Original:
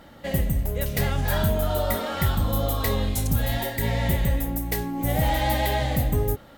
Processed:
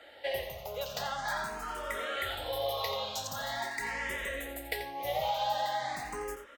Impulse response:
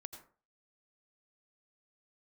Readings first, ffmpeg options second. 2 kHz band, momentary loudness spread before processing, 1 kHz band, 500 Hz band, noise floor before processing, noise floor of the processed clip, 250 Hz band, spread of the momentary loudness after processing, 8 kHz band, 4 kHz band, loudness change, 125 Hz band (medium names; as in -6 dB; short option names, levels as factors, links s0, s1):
-4.0 dB, 4 LU, -4.0 dB, -7.5 dB, -48 dBFS, -52 dBFS, -21.5 dB, 6 LU, -9.0 dB, -4.0 dB, -10.0 dB, -26.5 dB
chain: -filter_complex "[0:a]acrossover=split=480 7100:gain=0.0631 1 0.178[s0][s1][s2];[s0][s1][s2]amix=inputs=3:normalize=0,acrossover=split=130|260[s3][s4][s5];[s3]acompressor=threshold=0.00398:ratio=4[s6];[s4]acompressor=threshold=0.00112:ratio=4[s7];[s5]acompressor=threshold=0.0282:ratio=4[s8];[s6][s7][s8]amix=inputs=3:normalize=0,asplit=2[s9][s10];[s10]aecho=0:1:86:0.299[s11];[s9][s11]amix=inputs=2:normalize=0,asplit=2[s12][s13];[s13]afreqshift=0.44[s14];[s12][s14]amix=inputs=2:normalize=1,volume=1.33"